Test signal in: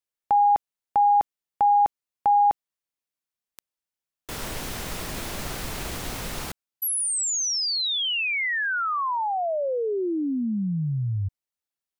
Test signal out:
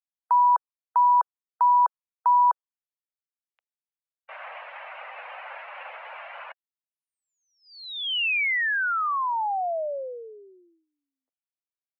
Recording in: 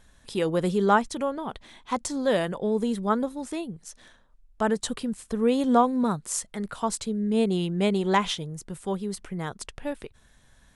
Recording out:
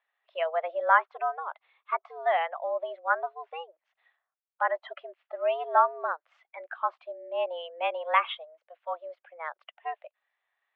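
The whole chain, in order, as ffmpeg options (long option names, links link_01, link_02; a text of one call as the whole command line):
ffmpeg -i in.wav -af "highpass=frequency=420:width_type=q:width=0.5412,highpass=frequency=420:width_type=q:width=1.307,lowpass=frequency=2800:width_type=q:width=0.5176,lowpass=frequency=2800:width_type=q:width=0.7071,lowpass=frequency=2800:width_type=q:width=1.932,afreqshift=160,afftdn=noise_reduction=16:noise_floor=-38,aemphasis=mode=production:type=bsi" out.wav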